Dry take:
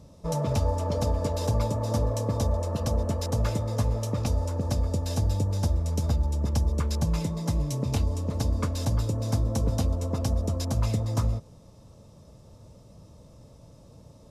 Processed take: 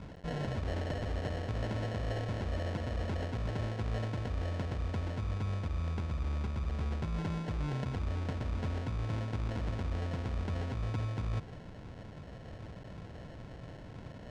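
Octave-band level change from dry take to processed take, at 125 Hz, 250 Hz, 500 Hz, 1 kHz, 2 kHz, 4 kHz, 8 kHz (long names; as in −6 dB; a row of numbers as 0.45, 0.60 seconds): −8.5, −8.5, −9.0, −7.5, +1.0, −8.5, −19.5 decibels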